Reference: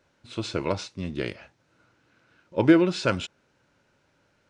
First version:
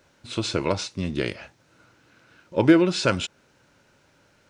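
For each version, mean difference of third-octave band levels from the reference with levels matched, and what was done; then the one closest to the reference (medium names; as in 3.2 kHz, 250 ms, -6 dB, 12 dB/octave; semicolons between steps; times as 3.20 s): 2.0 dB: treble shelf 5.9 kHz +6.5 dB; in parallel at 0 dB: compression, threshold -31 dBFS, peak gain reduction 18 dB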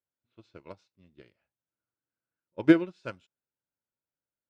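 12.5 dB: level-controlled noise filter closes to 2 kHz, open at -22 dBFS; upward expansion 2.5:1, over -33 dBFS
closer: first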